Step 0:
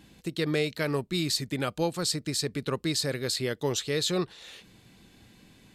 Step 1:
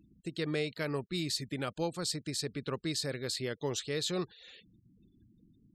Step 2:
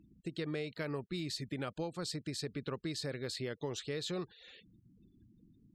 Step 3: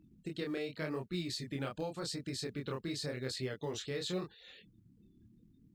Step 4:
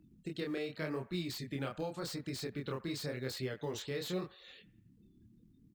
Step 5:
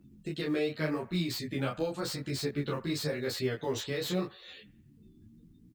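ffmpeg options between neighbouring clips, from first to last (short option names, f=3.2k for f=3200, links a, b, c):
-af "afftfilt=real='re*gte(hypot(re,im),0.00447)':imag='im*gte(hypot(re,im),0.00447)':win_size=1024:overlap=0.75,lowpass=12k,volume=-6dB"
-af "highshelf=f=4.9k:g=-9,acompressor=threshold=-35dB:ratio=4"
-filter_complex "[0:a]flanger=delay=22.5:depth=7.1:speed=0.89,asplit=2[a][b];[b]acrusher=bits=5:mode=log:mix=0:aa=0.000001,volume=-10.5dB[c];[a][c]amix=inputs=2:normalize=0,volume=1dB"
-filter_complex "[0:a]acrossover=split=560|2400[a][b][c];[b]aecho=1:1:88|176|264|352:0.168|0.0806|0.0387|0.0186[d];[c]aeval=exprs='0.0112*(abs(mod(val(0)/0.0112+3,4)-2)-1)':c=same[e];[a][d][e]amix=inputs=3:normalize=0"
-filter_complex "[0:a]asplit=2[a][b];[b]adelay=11.7,afreqshift=0.45[c];[a][c]amix=inputs=2:normalize=1,volume=9dB"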